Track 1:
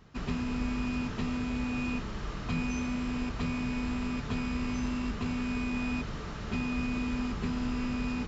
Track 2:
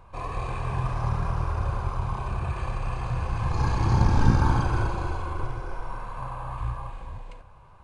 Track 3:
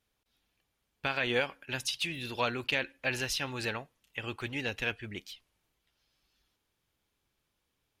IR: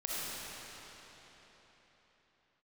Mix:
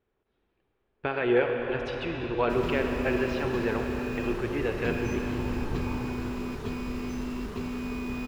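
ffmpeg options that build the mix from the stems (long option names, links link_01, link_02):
-filter_complex "[0:a]acrusher=bits=7:mix=0:aa=0.5,adelay=2350,volume=-3dB[link_01];[1:a]lowpass=3900,adelay=1450,volume=-14.5dB[link_02];[2:a]lowpass=1700,volume=-0.5dB,asplit=2[link_03][link_04];[link_04]volume=-4dB[link_05];[3:a]atrim=start_sample=2205[link_06];[link_05][link_06]afir=irnorm=-1:irlink=0[link_07];[link_01][link_02][link_03][link_07]amix=inputs=4:normalize=0,equalizer=frequency=390:width_type=o:width=0.54:gain=11"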